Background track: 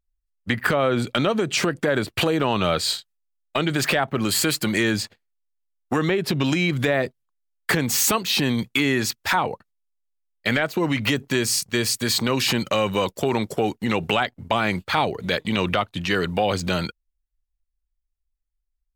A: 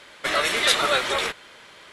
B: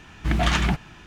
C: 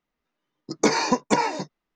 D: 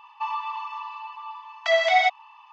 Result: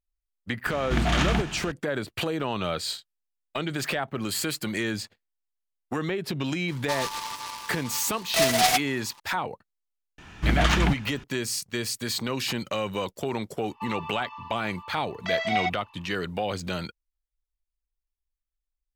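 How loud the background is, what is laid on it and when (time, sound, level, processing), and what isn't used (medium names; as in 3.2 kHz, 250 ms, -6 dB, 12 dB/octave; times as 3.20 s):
background track -7.5 dB
0.66 s: add B -4.5 dB + spectral levelling over time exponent 0.6
6.68 s: add D -2 dB + delay time shaken by noise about 3.4 kHz, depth 0.11 ms
10.18 s: add B -0.5 dB
13.60 s: add D -7 dB
not used: A, C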